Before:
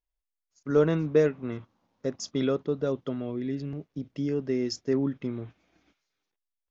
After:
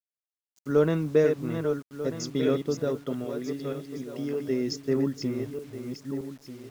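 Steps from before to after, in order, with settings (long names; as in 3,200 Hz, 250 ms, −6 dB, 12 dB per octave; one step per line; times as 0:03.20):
feedback delay that plays each chunk backwards 621 ms, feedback 46%, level −6 dB
0:03.25–0:04.48: low-shelf EQ 180 Hz −10 dB
bit reduction 9 bits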